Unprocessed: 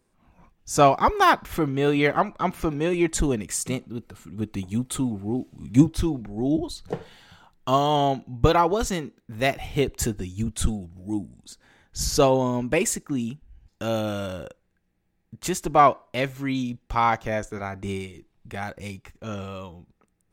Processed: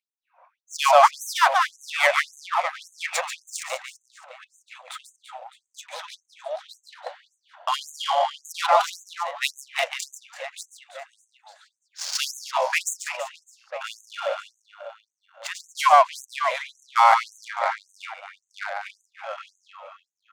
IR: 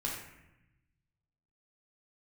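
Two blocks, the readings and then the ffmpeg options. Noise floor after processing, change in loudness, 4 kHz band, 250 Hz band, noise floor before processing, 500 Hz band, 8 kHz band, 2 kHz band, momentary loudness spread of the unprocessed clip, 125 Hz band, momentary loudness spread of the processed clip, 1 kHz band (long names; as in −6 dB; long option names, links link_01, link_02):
−81 dBFS, +1.0 dB, +3.5 dB, below −40 dB, −71 dBFS, −3.5 dB, −2.0 dB, +4.0 dB, 16 LU, below −40 dB, 23 LU, +2.5 dB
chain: -af "aecho=1:1:140|336|610.4|994.6|1532:0.631|0.398|0.251|0.158|0.1,adynamicsmooth=sensitivity=3:basefreq=1600,afftfilt=real='re*gte(b*sr/1024,500*pow(6200/500,0.5+0.5*sin(2*PI*1.8*pts/sr)))':imag='im*gte(b*sr/1024,500*pow(6200/500,0.5+0.5*sin(2*PI*1.8*pts/sr)))':win_size=1024:overlap=0.75,volume=6dB"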